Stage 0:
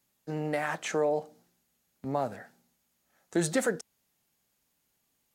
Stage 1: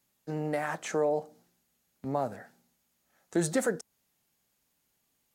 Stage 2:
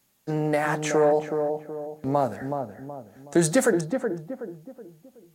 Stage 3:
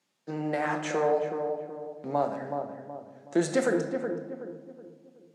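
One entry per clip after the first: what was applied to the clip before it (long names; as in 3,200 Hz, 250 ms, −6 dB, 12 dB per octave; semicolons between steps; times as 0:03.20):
dynamic equaliser 2,900 Hz, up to −5 dB, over −51 dBFS, Q 0.89
feedback echo with a low-pass in the loop 373 ms, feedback 43%, low-pass 1,000 Hz, level −5 dB; level +7.5 dB
band-pass filter 210–6,000 Hz; rectangular room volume 730 cubic metres, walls mixed, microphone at 0.9 metres; level −5.5 dB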